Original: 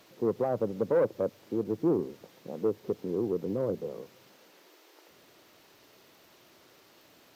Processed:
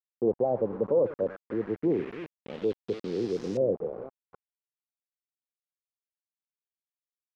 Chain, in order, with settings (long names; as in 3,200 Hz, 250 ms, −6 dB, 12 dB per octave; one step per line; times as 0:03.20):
delay that plays each chunk backwards 256 ms, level −14 dB
Chebyshev band-stop filter 580–5,700 Hz, order 2
centre clipping without the shift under −41 dBFS
auto-filter low-pass saw up 0.28 Hz 620–6,000 Hz